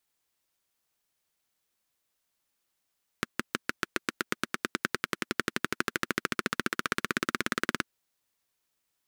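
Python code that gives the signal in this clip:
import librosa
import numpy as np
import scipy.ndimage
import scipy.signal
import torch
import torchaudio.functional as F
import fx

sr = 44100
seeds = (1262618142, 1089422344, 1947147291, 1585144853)

y = fx.engine_single_rev(sr, seeds[0], length_s=4.61, rpm=700, resonances_hz=(240.0, 340.0, 1400.0), end_rpm=2200)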